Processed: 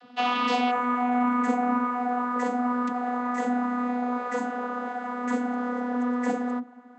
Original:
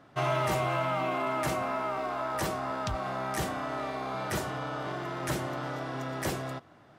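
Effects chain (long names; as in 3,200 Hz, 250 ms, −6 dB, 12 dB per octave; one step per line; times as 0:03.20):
notch filter 5,800 Hz, Q 17
channel vocoder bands 32, saw 246 Hz
flat-topped bell 3,700 Hz +9.5 dB 1.3 octaves, from 0:00.70 −9 dB
level +6.5 dB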